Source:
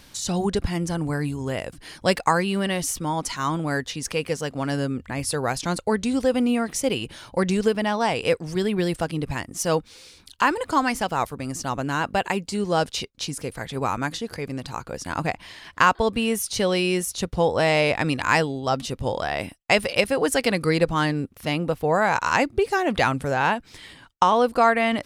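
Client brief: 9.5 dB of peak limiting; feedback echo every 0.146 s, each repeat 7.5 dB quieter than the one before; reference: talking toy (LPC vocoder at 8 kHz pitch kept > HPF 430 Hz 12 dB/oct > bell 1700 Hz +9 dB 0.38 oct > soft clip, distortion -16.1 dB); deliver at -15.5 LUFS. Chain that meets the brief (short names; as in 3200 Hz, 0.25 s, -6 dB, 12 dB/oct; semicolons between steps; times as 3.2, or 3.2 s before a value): limiter -12.5 dBFS; feedback echo 0.146 s, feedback 42%, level -7.5 dB; LPC vocoder at 8 kHz pitch kept; HPF 430 Hz 12 dB/oct; bell 1700 Hz +9 dB 0.38 oct; soft clip -15.5 dBFS; gain +12.5 dB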